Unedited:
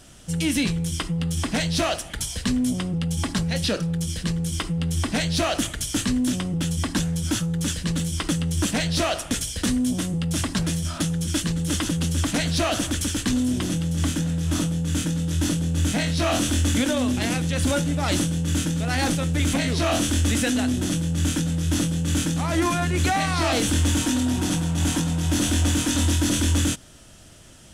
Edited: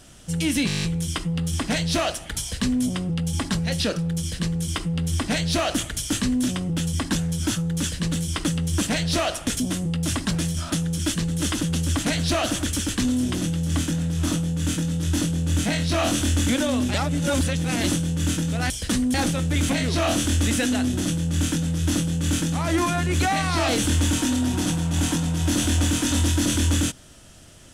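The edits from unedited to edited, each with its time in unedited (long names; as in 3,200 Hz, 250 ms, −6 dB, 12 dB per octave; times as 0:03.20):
0:00.67: stutter 0.02 s, 9 plays
0:09.44–0:09.88: move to 0:18.98
0:17.22–0:18.12: reverse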